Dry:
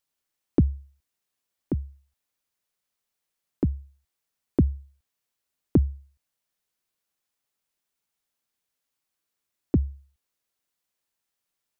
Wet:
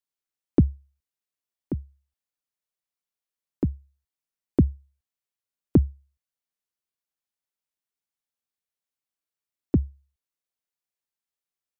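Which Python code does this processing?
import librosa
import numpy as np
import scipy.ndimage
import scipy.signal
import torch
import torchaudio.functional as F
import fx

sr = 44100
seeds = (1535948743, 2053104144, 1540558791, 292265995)

y = fx.upward_expand(x, sr, threshold_db=-40.0, expansion=1.5)
y = y * 10.0 ** (2.5 / 20.0)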